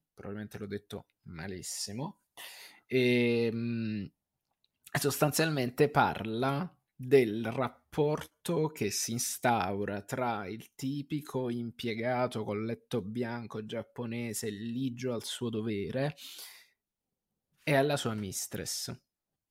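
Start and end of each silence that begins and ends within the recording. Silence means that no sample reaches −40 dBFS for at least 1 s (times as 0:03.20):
0:16.48–0:17.67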